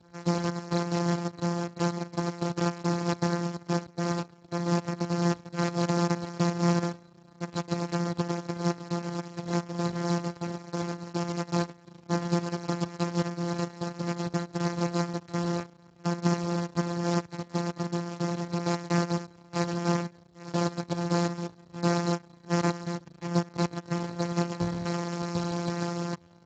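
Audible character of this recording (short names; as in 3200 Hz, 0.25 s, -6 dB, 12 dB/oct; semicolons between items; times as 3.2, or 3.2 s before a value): a buzz of ramps at a fixed pitch in blocks of 256 samples; Speex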